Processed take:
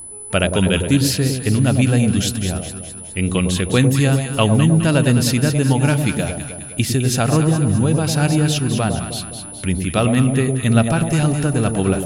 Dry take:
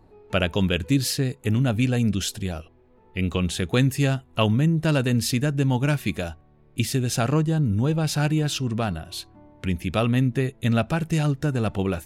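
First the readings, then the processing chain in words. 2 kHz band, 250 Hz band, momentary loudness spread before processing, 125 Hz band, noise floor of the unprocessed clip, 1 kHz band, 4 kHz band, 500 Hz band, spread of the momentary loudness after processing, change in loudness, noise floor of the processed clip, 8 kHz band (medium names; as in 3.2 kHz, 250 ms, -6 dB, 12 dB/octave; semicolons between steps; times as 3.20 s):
+6.0 dB, +6.5 dB, 8 LU, +6.5 dB, -55 dBFS, +6.0 dB, +6.0 dB, +6.5 dB, 9 LU, +6.5 dB, -33 dBFS, +9.5 dB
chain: whistle 10 kHz -37 dBFS; echo whose repeats swap between lows and highs 104 ms, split 870 Hz, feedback 70%, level -5 dB; trim +5 dB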